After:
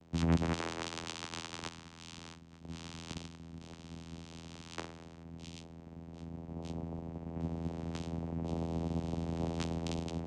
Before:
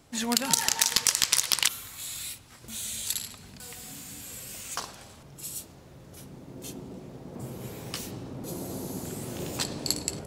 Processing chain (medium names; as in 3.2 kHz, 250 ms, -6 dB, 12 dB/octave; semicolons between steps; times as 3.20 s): 2.17–4.22 s: comb filter that takes the minimum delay 0.4 ms; wavefolder -20 dBFS; vocoder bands 4, saw 83 Hz; trim -1.5 dB